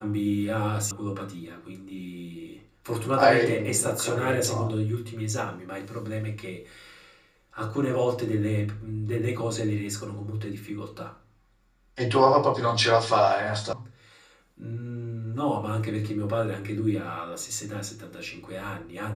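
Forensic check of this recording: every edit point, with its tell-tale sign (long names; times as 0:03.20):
0:00.91: cut off before it has died away
0:13.73: cut off before it has died away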